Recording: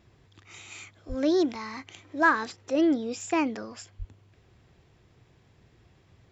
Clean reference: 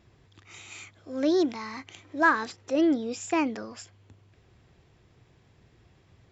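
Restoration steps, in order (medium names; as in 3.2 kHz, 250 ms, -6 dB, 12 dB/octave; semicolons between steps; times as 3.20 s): 1.08–1.20 s: high-pass 140 Hz 24 dB/octave; 3.98–4.10 s: high-pass 140 Hz 24 dB/octave; interpolate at 1.55/3.21 s, 1.8 ms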